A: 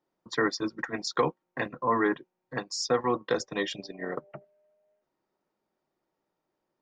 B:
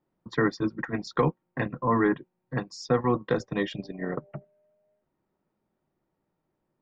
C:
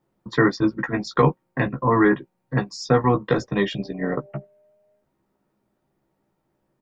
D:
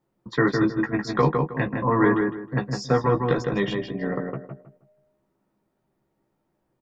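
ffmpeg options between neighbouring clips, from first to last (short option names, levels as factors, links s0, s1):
-af "bass=f=250:g=12,treble=f=4000:g=-12"
-filter_complex "[0:a]asplit=2[s0][s1];[s1]adelay=15,volume=0.562[s2];[s0][s2]amix=inputs=2:normalize=0,volume=1.88"
-filter_complex "[0:a]asplit=2[s0][s1];[s1]adelay=158,lowpass=f=1900:p=1,volume=0.668,asplit=2[s2][s3];[s3]adelay=158,lowpass=f=1900:p=1,volume=0.27,asplit=2[s4][s5];[s5]adelay=158,lowpass=f=1900:p=1,volume=0.27,asplit=2[s6][s7];[s7]adelay=158,lowpass=f=1900:p=1,volume=0.27[s8];[s0][s2][s4][s6][s8]amix=inputs=5:normalize=0,volume=0.708"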